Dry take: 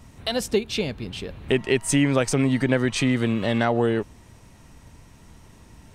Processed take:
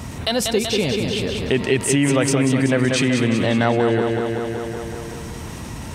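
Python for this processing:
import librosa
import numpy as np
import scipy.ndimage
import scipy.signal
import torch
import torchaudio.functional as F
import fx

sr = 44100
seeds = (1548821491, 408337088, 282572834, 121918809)

p1 = scipy.signal.sosfilt(scipy.signal.butter(2, 58.0, 'highpass', fs=sr, output='sos'), x)
p2 = p1 + fx.echo_feedback(p1, sr, ms=189, feedback_pct=59, wet_db=-6.5, dry=0)
y = fx.env_flatten(p2, sr, amount_pct=50)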